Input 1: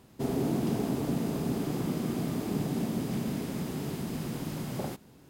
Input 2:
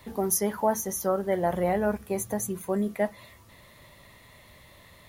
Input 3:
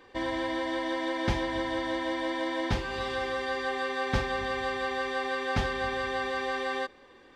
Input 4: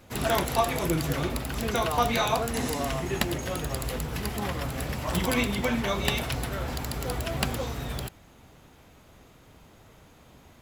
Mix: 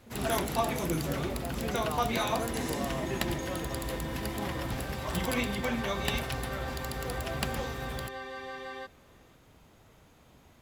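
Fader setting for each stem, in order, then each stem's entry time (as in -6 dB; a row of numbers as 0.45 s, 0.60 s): -11.0 dB, -15.5 dB, -9.5 dB, -5.0 dB; 0.00 s, 0.00 s, 2.00 s, 0.00 s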